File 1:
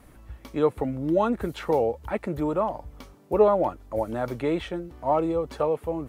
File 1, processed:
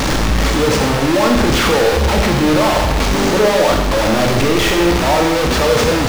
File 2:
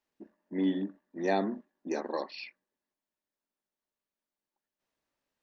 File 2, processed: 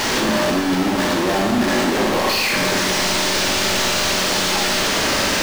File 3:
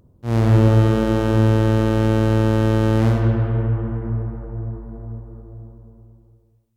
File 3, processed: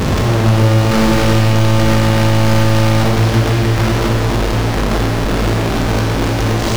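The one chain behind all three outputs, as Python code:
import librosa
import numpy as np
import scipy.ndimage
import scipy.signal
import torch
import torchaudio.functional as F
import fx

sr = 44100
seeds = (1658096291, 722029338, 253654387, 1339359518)

y = fx.delta_mod(x, sr, bps=32000, step_db=-22.5)
y = fx.power_curve(y, sr, exponent=0.35)
y = fx.rev_schroeder(y, sr, rt60_s=1.1, comb_ms=29, drr_db=1.5)
y = y * 10.0 ** (-1.5 / 20.0)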